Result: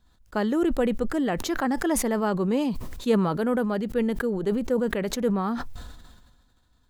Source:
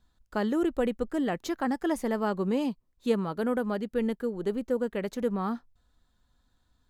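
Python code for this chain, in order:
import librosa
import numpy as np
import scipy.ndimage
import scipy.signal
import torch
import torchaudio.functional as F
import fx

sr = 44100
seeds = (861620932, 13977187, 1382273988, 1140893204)

y = fx.sustainer(x, sr, db_per_s=38.0)
y = F.gain(torch.from_numpy(y), 3.0).numpy()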